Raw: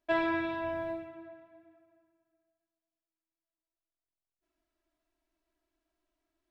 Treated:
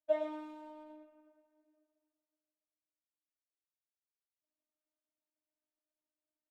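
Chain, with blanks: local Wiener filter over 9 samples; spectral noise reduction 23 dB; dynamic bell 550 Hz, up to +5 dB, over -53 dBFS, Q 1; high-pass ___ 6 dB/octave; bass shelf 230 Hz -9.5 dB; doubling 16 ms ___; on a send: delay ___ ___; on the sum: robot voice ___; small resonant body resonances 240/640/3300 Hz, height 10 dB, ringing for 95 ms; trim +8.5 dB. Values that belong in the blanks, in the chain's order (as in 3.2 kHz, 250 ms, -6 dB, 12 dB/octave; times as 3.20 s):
95 Hz, -4.5 dB, 109 ms, -8 dB, 306 Hz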